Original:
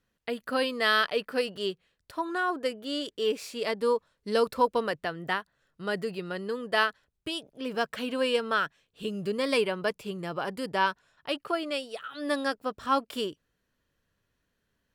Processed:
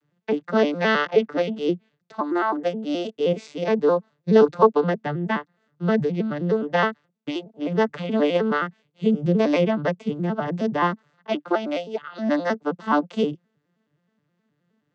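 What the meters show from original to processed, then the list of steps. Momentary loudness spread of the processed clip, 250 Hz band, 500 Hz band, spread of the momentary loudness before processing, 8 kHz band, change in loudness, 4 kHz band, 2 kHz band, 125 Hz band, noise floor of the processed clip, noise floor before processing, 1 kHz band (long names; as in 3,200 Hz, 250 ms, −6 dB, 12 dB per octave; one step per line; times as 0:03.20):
10 LU, +11.5 dB, +8.0 dB, 10 LU, can't be measured, +6.5 dB, −3.0 dB, +1.5 dB, +16.0 dB, −74 dBFS, −79 dBFS, +4.5 dB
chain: vocoder with an arpeggio as carrier minor triad, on D3, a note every 105 ms
level +8.5 dB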